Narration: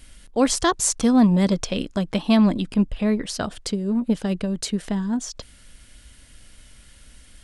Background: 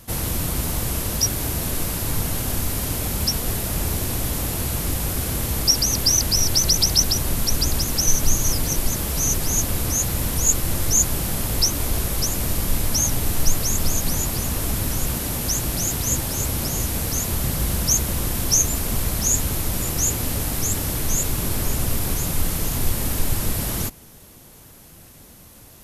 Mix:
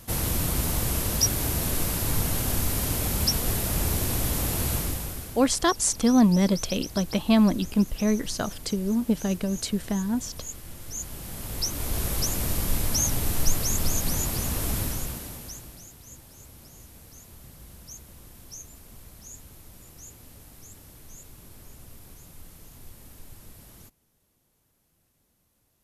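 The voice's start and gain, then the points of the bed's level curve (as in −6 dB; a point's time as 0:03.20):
5.00 s, −2.5 dB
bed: 0:04.75 −2 dB
0:05.51 −19.5 dB
0:10.78 −19.5 dB
0:12.08 −4 dB
0:14.80 −4 dB
0:15.92 −24.5 dB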